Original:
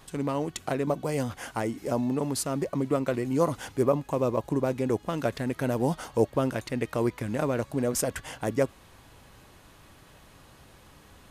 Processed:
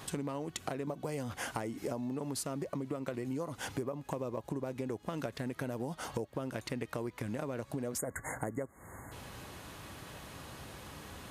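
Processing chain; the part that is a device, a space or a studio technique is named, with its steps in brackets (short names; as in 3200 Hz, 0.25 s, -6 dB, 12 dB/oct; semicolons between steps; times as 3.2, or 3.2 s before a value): spectral delete 7.98–9.12, 2200–6500 Hz; serial compression, leveller first (compressor 2.5:1, threshold -29 dBFS, peak gain reduction 8.5 dB; compressor 6:1, threshold -41 dBFS, peak gain reduction 15.5 dB); HPF 59 Hz; gain +6 dB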